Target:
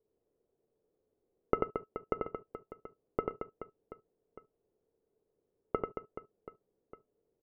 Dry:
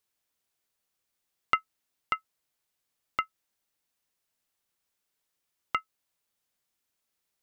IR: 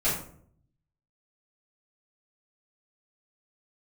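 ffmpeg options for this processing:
-filter_complex "[0:a]lowpass=frequency=440:width_type=q:width=4.9,aecho=1:1:90|225|427.5|731.2|1187:0.631|0.398|0.251|0.158|0.1,asplit=2[link_01][link_02];[1:a]atrim=start_sample=2205,atrim=end_sample=3528[link_03];[link_02][link_03]afir=irnorm=-1:irlink=0,volume=-26dB[link_04];[link_01][link_04]amix=inputs=2:normalize=0,volume=7dB"

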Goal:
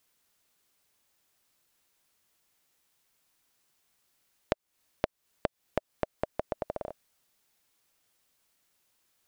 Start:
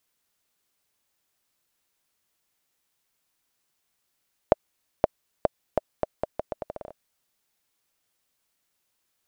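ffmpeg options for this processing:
ffmpeg -i in.wav -af "acompressor=threshold=-30dB:ratio=6,volume=3dB" out.wav

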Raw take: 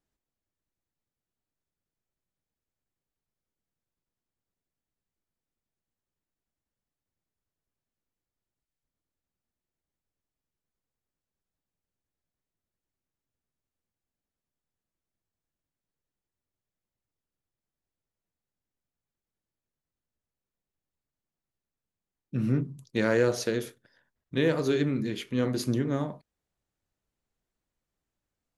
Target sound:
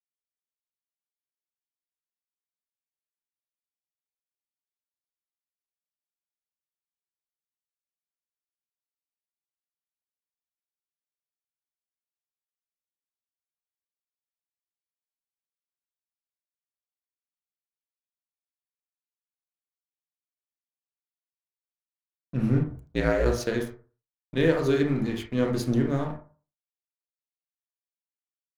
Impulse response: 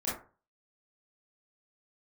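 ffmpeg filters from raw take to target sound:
-filter_complex "[0:a]aeval=exprs='sgn(val(0))*max(abs(val(0))-0.00596,0)':channel_layout=same,asplit=3[link_01][link_02][link_03];[link_01]afade=type=out:start_time=22.63:duration=0.02[link_04];[link_02]aeval=exprs='val(0)*sin(2*PI*59*n/s)':channel_layout=same,afade=type=in:start_time=22.63:duration=0.02,afade=type=out:start_time=23.24:duration=0.02[link_05];[link_03]afade=type=in:start_time=23.24:duration=0.02[link_06];[link_04][link_05][link_06]amix=inputs=3:normalize=0,asplit=2[link_07][link_08];[link_08]asubboost=boost=6.5:cutoff=85[link_09];[1:a]atrim=start_sample=2205,lowpass=3200[link_10];[link_09][link_10]afir=irnorm=-1:irlink=0,volume=-6.5dB[link_11];[link_07][link_11]amix=inputs=2:normalize=0"

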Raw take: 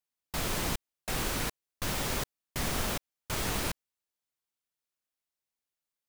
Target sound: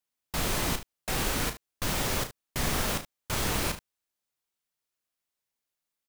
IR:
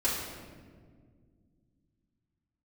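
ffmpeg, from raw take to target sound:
-filter_complex "[0:a]asplit=2[link_01][link_02];[link_02]aecho=0:1:34|73:0.355|0.2[link_03];[link_01][link_03]amix=inputs=2:normalize=0,volume=2.5dB"

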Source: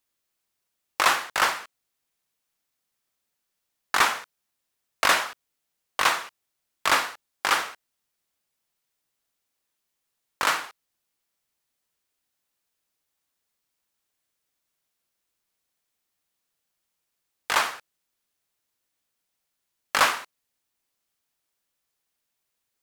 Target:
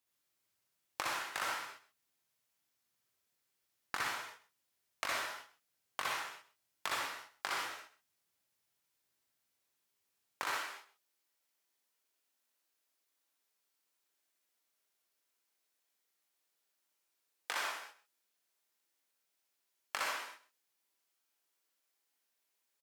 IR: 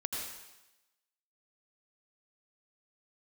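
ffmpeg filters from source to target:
-filter_complex "[0:a]asetnsamples=nb_out_samples=441:pad=0,asendcmd='10.45 highpass f 270',highpass=49,acompressor=threshold=-31dB:ratio=8,aecho=1:1:130:0.133[link_01];[1:a]atrim=start_sample=2205,afade=type=out:start_time=0.24:duration=0.01,atrim=end_sample=11025,asetrate=61740,aresample=44100[link_02];[link_01][link_02]afir=irnorm=-1:irlink=0,volume=-1.5dB"

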